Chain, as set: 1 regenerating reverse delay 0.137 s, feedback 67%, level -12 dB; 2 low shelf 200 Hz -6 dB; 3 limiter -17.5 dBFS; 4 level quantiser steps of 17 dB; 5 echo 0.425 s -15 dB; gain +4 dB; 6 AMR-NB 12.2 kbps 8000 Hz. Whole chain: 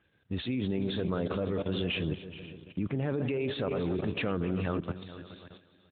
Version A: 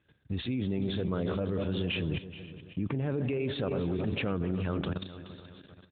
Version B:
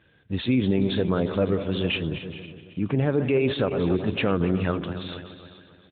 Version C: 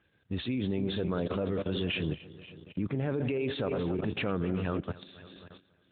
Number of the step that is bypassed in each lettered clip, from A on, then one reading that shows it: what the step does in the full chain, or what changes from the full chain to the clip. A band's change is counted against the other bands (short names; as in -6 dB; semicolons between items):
2, 125 Hz band +2.5 dB; 4, loudness change +7.5 LU; 5, momentary loudness spread change +4 LU